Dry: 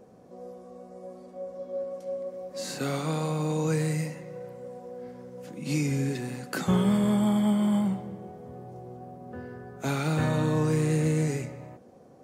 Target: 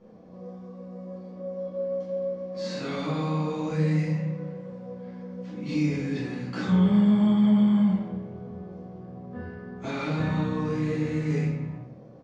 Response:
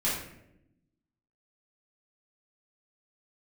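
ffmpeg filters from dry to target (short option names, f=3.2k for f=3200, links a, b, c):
-filter_complex "[0:a]lowpass=f=5.3k:w=0.5412,lowpass=f=5.3k:w=1.3066,alimiter=limit=-21.5dB:level=0:latency=1:release=63,asplit=2[a][b];[b]adelay=33,volume=-11.5dB[c];[a][c]amix=inputs=2:normalize=0[d];[1:a]atrim=start_sample=2205[e];[d][e]afir=irnorm=-1:irlink=0,volume=-7.5dB"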